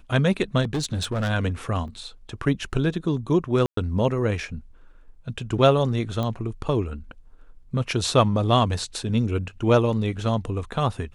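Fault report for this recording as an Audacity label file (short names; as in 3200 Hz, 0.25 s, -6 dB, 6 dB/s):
0.630000	1.310000	clipped -21.5 dBFS
1.880000	1.880000	gap 2.3 ms
3.660000	3.770000	gap 0.113 s
6.230000	6.230000	pop -16 dBFS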